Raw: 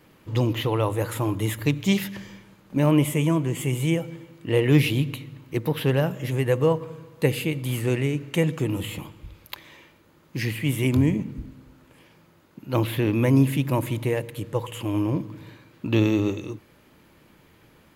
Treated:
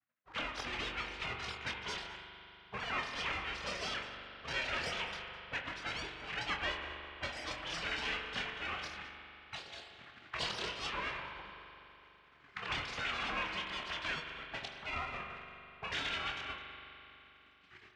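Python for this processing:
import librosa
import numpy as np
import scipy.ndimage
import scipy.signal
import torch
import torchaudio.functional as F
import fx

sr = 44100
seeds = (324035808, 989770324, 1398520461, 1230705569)

p1 = fx.sine_speech(x, sr)
p2 = fx.recorder_agc(p1, sr, target_db=-13.5, rise_db_per_s=20.0, max_gain_db=30)
p3 = fx.env_lowpass(p2, sr, base_hz=300.0, full_db=-16.0)
p4 = fx.tilt_eq(p3, sr, slope=2.0)
p5 = np.maximum(p4, 0.0)
p6 = fx.spec_gate(p5, sr, threshold_db=-25, keep='weak')
p7 = 10.0 ** (-34.5 / 20.0) * (np.abs((p6 / 10.0 ** (-34.5 / 20.0) + 3.0) % 4.0 - 2.0) - 1.0)
p8 = p6 + F.gain(torch.from_numpy(p7), -6.5).numpy()
p9 = fx.air_absorb(p8, sr, metres=110.0)
p10 = fx.doubler(p9, sr, ms=25.0, db=-7)
p11 = p10 + fx.echo_single(p10, sr, ms=208, db=-18.5, dry=0)
p12 = fx.rev_spring(p11, sr, rt60_s=3.3, pass_ms=(41,), chirp_ms=45, drr_db=4.5)
y = F.gain(torch.from_numpy(p12), 1.0).numpy()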